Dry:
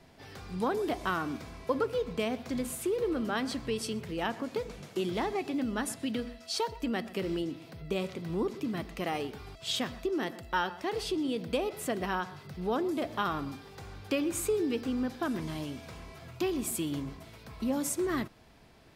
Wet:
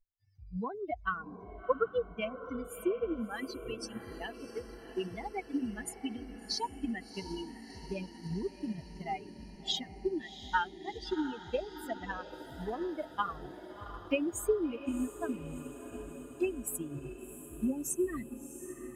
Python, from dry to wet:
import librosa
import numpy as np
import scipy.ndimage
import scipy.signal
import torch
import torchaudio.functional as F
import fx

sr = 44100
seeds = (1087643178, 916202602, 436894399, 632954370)

y = fx.bin_expand(x, sr, power=3.0)
y = fx.echo_diffused(y, sr, ms=695, feedback_pct=67, wet_db=-11.0)
y = fx.transient(y, sr, attack_db=3, sustain_db=-1)
y = F.gain(torch.from_numpy(y), 2.0).numpy()